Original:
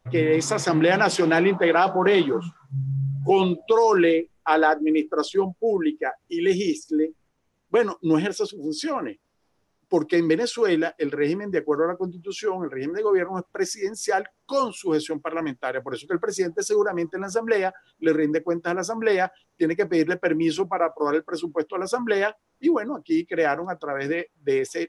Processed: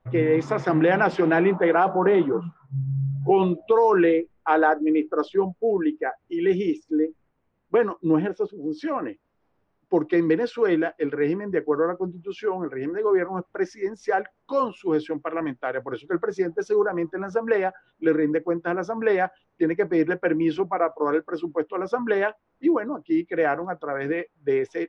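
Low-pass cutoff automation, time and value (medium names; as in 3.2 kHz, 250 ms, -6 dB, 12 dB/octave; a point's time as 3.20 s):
1.41 s 2 kHz
2.25 s 1.3 kHz
2.79 s 1.3 kHz
3.62 s 2 kHz
7.81 s 2 kHz
8.50 s 1.1 kHz
8.88 s 2.2 kHz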